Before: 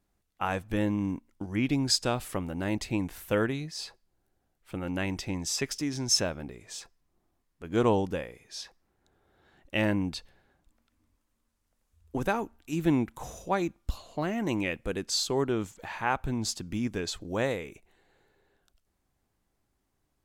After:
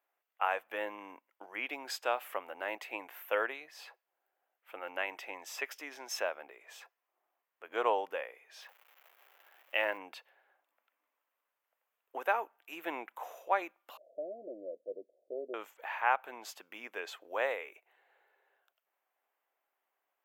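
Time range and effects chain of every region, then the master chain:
8.6–9.97 low shelf 230 Hz -5 dB + crackle 410/s -44 dBFS
13.97–15.54 steep low-pass 640 Hz 96 dB/oct + notch 430 Hz
whole clip: HPF 550 Hz 24 dB/oct; band shelf 6300 Hz -15.5 dB

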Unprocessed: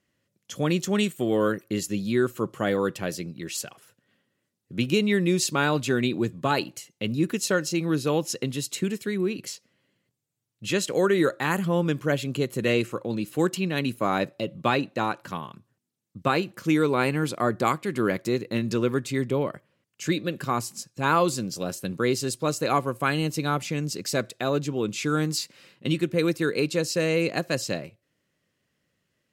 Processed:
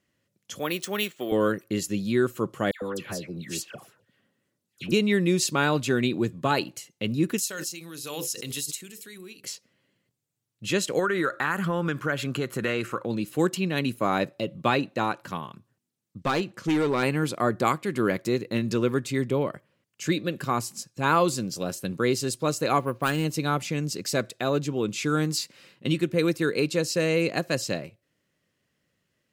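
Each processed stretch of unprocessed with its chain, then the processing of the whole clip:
0.59–1.32 weighting filter A + careless resampling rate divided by 3×, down filtered, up hold
2.71–4.92 compressor 3:1, threshold -29 dBFS + dispersion lows, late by 0.11 s, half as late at 1600 Hz
7.38–9.44 pre-emphasis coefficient 0.9 + notches 50/100/150/200/250/300/350/400/450/500 Hz + backwards sustainer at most 30 dB/s
10.99–13.06 bell 1400 Hz +12.5 dB 0.91 oct + compressor 3:1, threshold -23 dBFS
16.2–17.03 LPF 8700 Hz + hard clip -19.5 dBFS
22.8–23.25 self-modulated delay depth 0.12 ms + careless resampling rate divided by 4×, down filtered, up hold + high shelf 6600 Hz -8.5 dB
whole clip: dry

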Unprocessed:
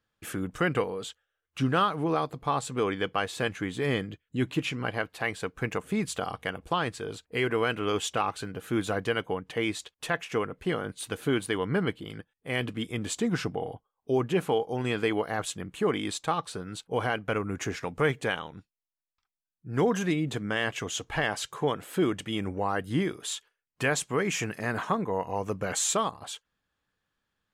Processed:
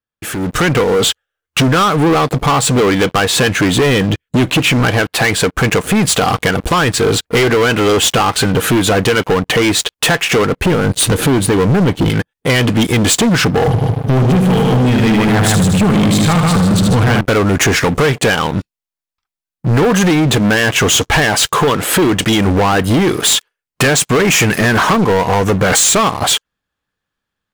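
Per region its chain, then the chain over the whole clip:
10.65–12.1 low shelf 420 Hz +10.5 dB + compressor 1.5:1, threshold -29 dBFS
13.67–17.21 resonant low shelf 270 Hz +10.5 dB, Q 1.5 + multi-head echo 76 ms, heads first and second, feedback 42%, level -7.5 dB
whole clip: compressor, threshold -32 dBFS; sample leveller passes 5; AGC gain up to 14 dB; gain -1.5 dB

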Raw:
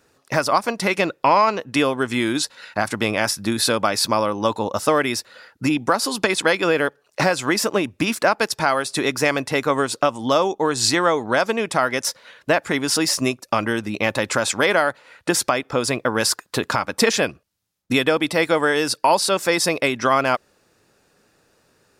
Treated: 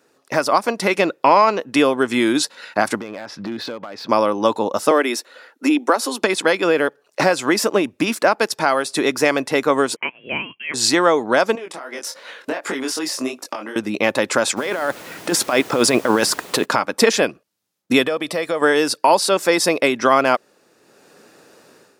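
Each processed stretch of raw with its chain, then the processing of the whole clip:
3–4.09 air absorption 250 m + compressor, threshold -30 dBFS + overloaded stage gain 28.5 dB
4.91–6.22 steep high-pass 240 Hz 48 dB/oct + notch 4800 Hz, Q 11
9.96–10.74 Butterworth band-pass 2500 Hz, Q 0.79 + inverted band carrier 3600 Hz
11.55–13.76 HPF 270 Hz + compressor 10:1, threshold -29 dBFS + chorus 2.7 Hz, delay 19.5 ms, depth 4.4 ms
14.56–16.64 negative-ratio compressor -24 dBFS + added noise pink -42 dBFS
18.04–18.62 comb 1.7 ms, depth 36% + compressor 2.5:1, threshold -26 dBFS
whole clip: HPF 290 Hz 12 dB/oct; low shelf 420 Hz +8.5 dB; AGC; gain -1 dB

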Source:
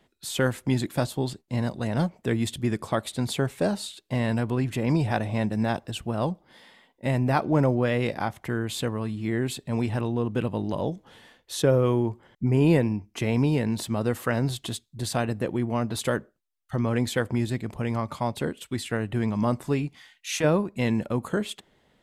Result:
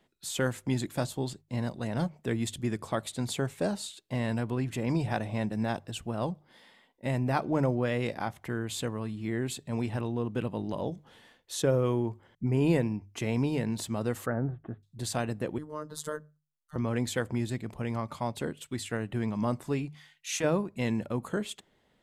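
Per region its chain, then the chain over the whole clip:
14.26–14.83 steep low-pass 1600 Hz + notch 1000 Hz, Q 5.2
15.58–16.76 fixed phaser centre 480 Hz, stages 8 + robotiser 152 Hz
whole clip: notches 50/100/150 Hz; dynamic EQ 7100 Hz, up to +5 dB, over -51 dBFS, Q 2.2; gain -5 dB

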